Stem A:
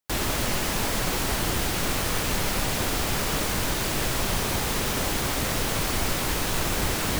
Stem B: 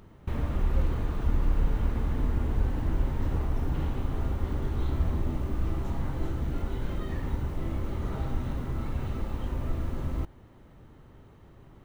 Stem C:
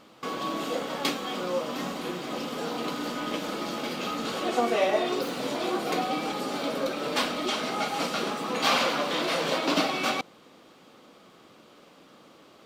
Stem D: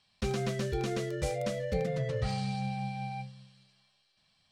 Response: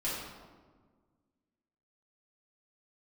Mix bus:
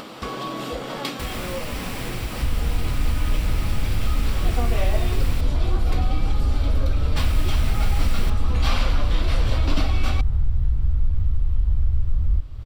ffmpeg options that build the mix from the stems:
-filter_complex "[0:a]equalizer=f=2400:t=o:w=0.77:g=7,adelay=1100,volume=0.251,asplit=3[s0][s1][s2];[s0]atrim=end=5.41,asetpts=PTS-STARTPTS,afade=t=out:st=5.406:d=0.004:c=hsin[s3];[s1]atrim=start=5.41:end=7.17,asetpts=PTS-STARTPTS,volume=0[s4];[s2]atrim=start=7.17,asetpts=PTS-STARTPTS,afade=t=in:d=0.004:c=hsin[s5];[s3][s4][s5]concat=n=3:v=0:a=1[s6];[1:a]aeval=exprs='0.0447*(abs(mod(val(0)/0.0447+3,4)-2)-1)':c=same,adelay=2150,volume=0.631[s7];[2:a]volume=0.631[s8];[3:a]volume=0.2[s9];[s7][s9]amix=inputs=2:normalize=0,asubboost=boost=7.5:cutoff=85,acompressor=threshold=0.0355:ratio=3,volume=1[s10];[s6][s8][s10]amix=inputs=3:normalize=0,bandreject=f=6500:w=11,asubboost=boost=3.5:cutoff=210,acompressor=mode=upward:threshold=0.0794:ratio=2.5"

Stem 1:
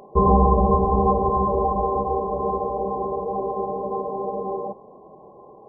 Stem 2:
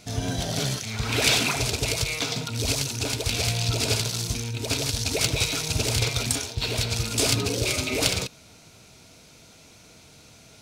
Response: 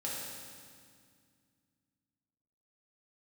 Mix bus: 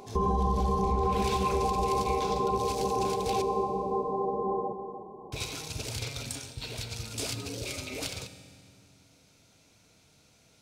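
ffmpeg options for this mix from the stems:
-filter_complex "[0:a]equalizer=f=590:t=o:w=0.45:g=-11,bandreject=f=50:t=h:w=6,bandreject=f=100:t=h:w=6,bandreject=f=150:t=h:w=6,bandreject=f=200:t=h:w=6,volume=1,asplit=2[s0][s1];[s1]volume=0.335[s2];[1:a]volume=0.224,asplit=3[s3][s4][s5];[s3]atrim=end=3.42,asetpts=PTS-STARTPTS,afade=t=out:st=3.416:d=0.004:c=hsin[s6];[s4]atrim=start=3.42:end=5.32,asetpts=PTS-STARTPTS,volume=0[s7];[s5]atrim=start=5.32,asetpts=PTS-STARTPTS,afade=t=in:d=0.004:c=hsin[s8];[s6][s7][s8]concat=n=3:v=0:a=1,asplit=2[s9][s10];[s10]volume=0.266[s11];[2:a]atrim=start_sample=2205[s12];[s11][s12]afir=irnorm=-1:irlink=0[s13];[s2]aecho=0:1:301|602|903|1204|1505:1|0.32|0.102|0.0328|0.0105[s14];[s0][s9][s13][s14]amix=inputs=4:normalize=0,alimiter=limit=0.119:level=0:latency=1:release=165"

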